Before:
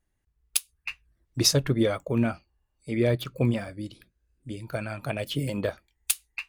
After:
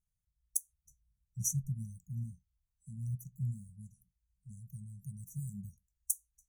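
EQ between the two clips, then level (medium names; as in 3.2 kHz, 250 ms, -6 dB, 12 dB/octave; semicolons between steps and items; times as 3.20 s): brick-wall FIR band-stop 210–5700 Hz; bass shelf 180 Hz -3 dB; -7.0 dB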